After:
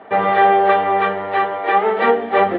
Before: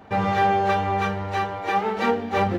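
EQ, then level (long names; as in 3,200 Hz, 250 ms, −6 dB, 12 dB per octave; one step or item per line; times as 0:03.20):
high-frequency loss of the air 330 metres
loudspeaker in its box 280–4,600 Hz, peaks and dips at 420 Hz +6 dB, 660 Hz +8 dB, 1,200 Hz +5 dB, 1,900 Hz +8 dB, 3,300 Hz +7 dB
+5.0 dB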